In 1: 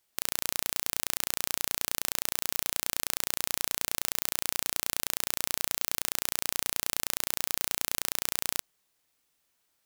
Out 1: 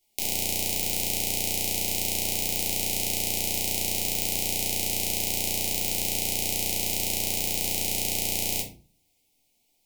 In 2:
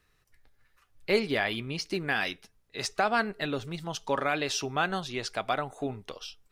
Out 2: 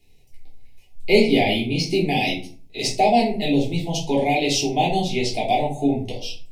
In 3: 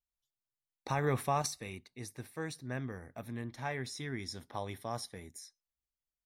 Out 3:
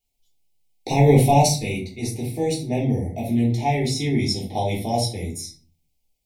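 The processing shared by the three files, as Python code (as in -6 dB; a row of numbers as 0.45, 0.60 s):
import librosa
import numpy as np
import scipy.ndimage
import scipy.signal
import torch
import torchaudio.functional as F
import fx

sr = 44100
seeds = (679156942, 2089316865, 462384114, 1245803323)

y = scipy.signal.sosfilt(scipy.signal.ellip(3, 1.0, 70, [840.0, 2200.0], 'bandstop', fs=sr, output='sos'), x)
y = fx.room_shoebox(y, sr, seeds[0], volume_m3=260.0, walls='furnished', distance_m=3.3)
y = y * 10.0 ** (-3 / 20.0) / np.max(np.abs(y))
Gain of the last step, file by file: 0.0, +4.5, +11.0 dB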